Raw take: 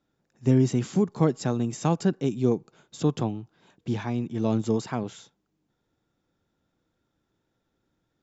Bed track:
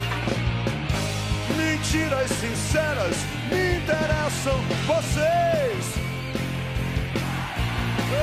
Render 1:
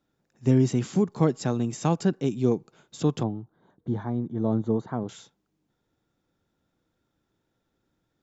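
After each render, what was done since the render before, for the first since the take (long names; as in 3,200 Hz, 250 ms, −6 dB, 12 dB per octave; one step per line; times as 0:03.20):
0:03.23–0:05.09: moving average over 17 samples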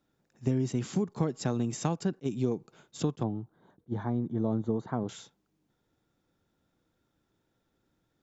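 downward compressor 5 to 1, threshold −25 dBFS, peak gain reduction 9.5 dB
level that may rise only so fast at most 590 dB per second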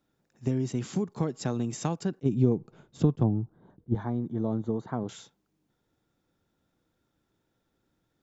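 0:02.23–0:03.95: spectral tilt −3 dB per octave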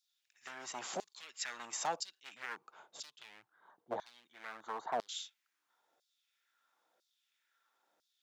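hard clipping −26.5 dBFS, distortion −6 dB
auto-filter high-pass saw down 1 Hz 590–4,800 Hz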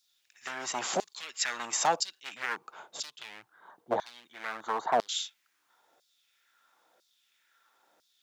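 level +10 dB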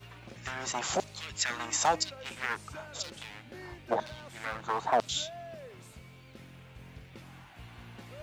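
mix in bed track −23.5 dB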